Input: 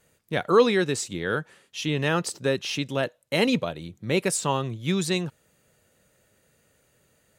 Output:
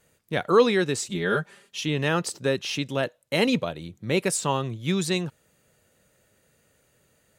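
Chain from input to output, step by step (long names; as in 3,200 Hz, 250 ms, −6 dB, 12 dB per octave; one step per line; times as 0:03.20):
0:01.09–0:01.80: comb filter 5 ms, depth 98%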